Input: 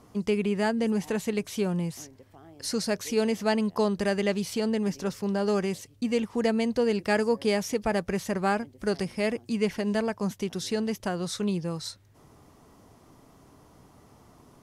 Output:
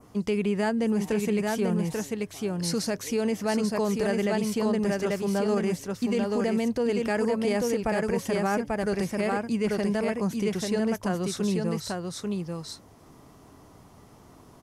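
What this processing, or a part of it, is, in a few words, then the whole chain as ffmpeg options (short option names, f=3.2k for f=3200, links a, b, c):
clipper into limiter: -af "aecho=1:1:839:0.631,adynamicequalizer=threshold=0.00355:dfrequency=3900:dqfactor=1.4:tfrequency=3900:tqfactor=1.4:attack=5:release=100:ratio=0.375:range=3:mode=cutabove:tftype=bell,asoftclip=type=hard:threshold=-14dB,alimiter=limit=-19dB:level=0:latency=1:release=19,volume=1.5dB"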